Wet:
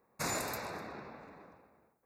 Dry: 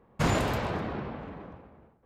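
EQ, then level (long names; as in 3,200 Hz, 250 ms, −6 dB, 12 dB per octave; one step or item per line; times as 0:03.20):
Butterworth band-reject 3,100 Hz, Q 2.9
RIAA equalisation recording
low-shelf EQ 340 Hz +2.5 dB
−8.5 dB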